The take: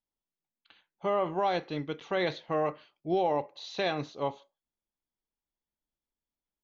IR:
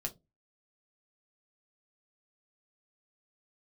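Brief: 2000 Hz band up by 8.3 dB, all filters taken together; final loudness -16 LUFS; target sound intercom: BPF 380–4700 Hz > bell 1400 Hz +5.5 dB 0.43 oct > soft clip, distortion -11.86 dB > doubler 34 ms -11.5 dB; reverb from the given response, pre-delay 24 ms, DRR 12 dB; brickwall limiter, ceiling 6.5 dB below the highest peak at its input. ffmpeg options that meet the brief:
-filter_complex "[0:a]equalizer=f=2k:t=o:g=8,alimiter=limit=-21dB:level=0:latency=1,asplit=2[a][b];[1:a]atrim=start_sample=2205,adelay=24[c];[b][c]afir=irnorm=-1:irlink=0,volume=-12dB[d];[a][d]amix=inputs=2:normalize=0,highpass=380,lowpass=4.7k,equalizer=f=1.4k:t=o:w=0.43:g=5.5,asoftclip=threshold=-29dB,asplit=2[e][f];[f]adelay=34,volume=-11.5dB[g];[e][g]amix=inputs=2:normalize=0,volume=21dB"

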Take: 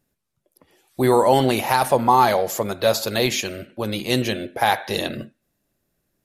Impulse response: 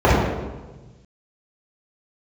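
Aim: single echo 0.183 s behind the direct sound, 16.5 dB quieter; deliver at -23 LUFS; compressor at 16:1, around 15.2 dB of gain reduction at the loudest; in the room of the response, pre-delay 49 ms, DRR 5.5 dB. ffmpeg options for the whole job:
-filter_complex "[0:a]acompressor=threshold=-26dB:ratio=16,aecho=1:1:183:0.15,asplit=2[a][b];[1:a]atrim=start_sample=2205,adelay=49[c];[b][c]afir=irnorm=-1:irlink=0,volume=-33dB[d];[a][d]amix=inputs=2:normalize=0,volume=6dB"

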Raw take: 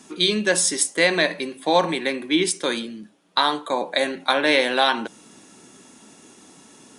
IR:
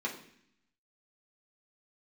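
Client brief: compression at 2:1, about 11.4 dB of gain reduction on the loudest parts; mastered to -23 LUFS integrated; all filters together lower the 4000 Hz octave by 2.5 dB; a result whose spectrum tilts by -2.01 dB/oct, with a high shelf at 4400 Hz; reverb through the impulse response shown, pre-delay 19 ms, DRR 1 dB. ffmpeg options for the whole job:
-filter_complex "[0:a]equalizer=f=4k:t=o:g=-6,highshelf=f=4.4k:g=6.5,acompressor=threshold=-35dB:ratio=2,asplit=2[a][b];[1:a]atrim=start_sample=2205,adelay=19[c];[b][c]afir=irnorm=-1:irlink=0,volume=-5.5dB[d];[a][d]amix=inputs=2:normalize=0,volume=5.5dB"

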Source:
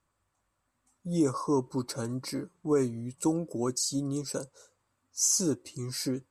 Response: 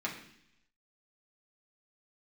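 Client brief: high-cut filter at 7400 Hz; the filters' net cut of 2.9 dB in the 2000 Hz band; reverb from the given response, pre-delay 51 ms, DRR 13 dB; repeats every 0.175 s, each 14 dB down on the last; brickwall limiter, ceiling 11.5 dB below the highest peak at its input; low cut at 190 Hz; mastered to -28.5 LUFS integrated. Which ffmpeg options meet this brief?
-filter_complex "[0:a]highpass=190,lowpass=7.4k,equalizer=f=2k:t=o:g=-4,alimiter=level_in=3.5dB:limit=-24dB:level=0:latency=1,volume=-3.5dB,aecho=1:1:175|350:0.2|0.0399,asplit=2[a][b];[1:a]atrim=start_sample=2205,adelay=51[c];[b][c]afir=irnorm=-1:irlink=0,volume=-17.5dB[d];[a][d]amix=inputs=2:normalize=0,volume=8.5dB"

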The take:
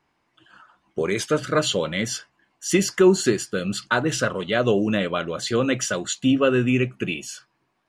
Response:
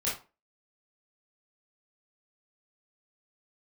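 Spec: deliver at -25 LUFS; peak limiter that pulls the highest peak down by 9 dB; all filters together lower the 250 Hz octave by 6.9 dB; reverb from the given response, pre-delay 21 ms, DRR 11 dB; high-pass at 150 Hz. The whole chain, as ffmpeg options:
-filter_complex "[0:a]highpass=150,equalizer=f=250:t=o:g=-9,alimiter=limit=-16dB:level=0:latency=1,asplit=2[a][b];[1:a]atrim=start_sample=2205,adelay=21[c];[b][c]afir=irnorm=-1:irlink=0,volume=-17.5dB[d];[a][d]amix=inputs=2:normalize=0,volume=2dB"

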